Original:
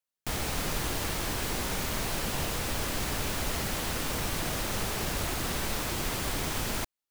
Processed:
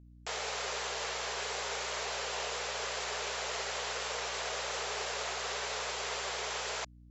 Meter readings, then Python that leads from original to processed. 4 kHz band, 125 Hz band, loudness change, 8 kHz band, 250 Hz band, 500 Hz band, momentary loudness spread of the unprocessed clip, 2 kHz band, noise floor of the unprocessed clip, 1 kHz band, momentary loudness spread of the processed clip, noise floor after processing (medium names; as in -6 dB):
-1.5 dB, -19.0 dB, -4.0 dB, -4.5 dB, -20.0 dB, -2.0 dB, 0 LU, -1.5 dB, under -85 dBFS, -1.5 dB, 0 LU, -55 dBFS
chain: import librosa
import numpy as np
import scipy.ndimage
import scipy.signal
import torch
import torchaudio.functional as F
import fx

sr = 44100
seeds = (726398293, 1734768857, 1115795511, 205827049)

y = fx.brickwall_bandpass(x, sr, low_hz=380.0, high_hz=7700.0)
y = fx.add_hum(y, sr, base_hz=60, snr_db=18)
y = y * 10.0 ** (-1.5 / 20.0)